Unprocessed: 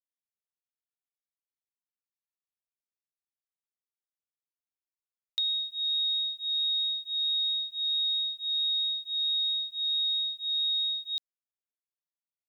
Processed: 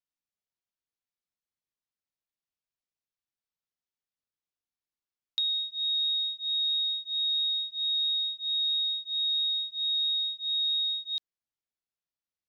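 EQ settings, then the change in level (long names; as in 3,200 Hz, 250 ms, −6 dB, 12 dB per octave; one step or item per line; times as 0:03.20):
high-frequency loss of the air 200 metres
bass and treble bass +5 dB, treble +13 dB
0.0 dB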